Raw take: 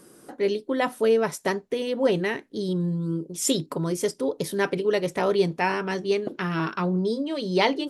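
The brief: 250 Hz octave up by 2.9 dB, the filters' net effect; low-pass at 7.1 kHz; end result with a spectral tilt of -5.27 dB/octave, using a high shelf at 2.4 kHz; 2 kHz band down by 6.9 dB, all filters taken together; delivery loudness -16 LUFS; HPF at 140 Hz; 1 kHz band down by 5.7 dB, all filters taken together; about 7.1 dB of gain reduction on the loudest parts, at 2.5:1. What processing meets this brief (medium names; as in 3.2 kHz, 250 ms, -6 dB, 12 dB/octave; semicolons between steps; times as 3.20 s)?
high-pass 140 Hz; low-pass 7.1 kHz; peaking EQ 250 Hz +5.5 dB; peaking EQ 1 kHz -6.5 dB; peaking EQ 2 kHz -9 dB; treble shelf 2.4 kHz +5 dB; compression 2.5:1, threshold -26 dBFS; trim +13 dB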